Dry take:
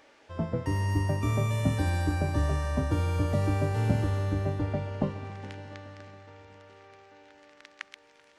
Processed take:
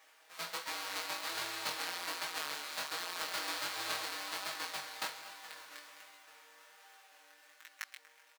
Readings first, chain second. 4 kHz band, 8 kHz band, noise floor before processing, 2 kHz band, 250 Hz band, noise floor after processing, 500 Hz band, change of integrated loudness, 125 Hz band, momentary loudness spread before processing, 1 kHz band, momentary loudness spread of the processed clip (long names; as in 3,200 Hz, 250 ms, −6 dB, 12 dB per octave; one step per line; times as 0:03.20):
+7.5 dB, +4.5 dB, −60 dBFS, 0.0 dB, −24.5 dB, −64 dBFS, −15.0 dB, −10.0 dB, below −40 dB, 17 LU, −5.0 dB, 20 LU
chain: each half-wave held at its own peak
comb filter 6.3 ms, depth 77%
chorus effect 1.3 Hz, delay 17.5 ms, depth 6.5 ms
high-pass filter 1,100 Hz 12 dB per octave
slap from a distant wall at 41 metres, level −18 dB
dynamic equaliser 4,300 Hz, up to +7 dB, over −58 dBFS, Q 3.9
level −4.5 dB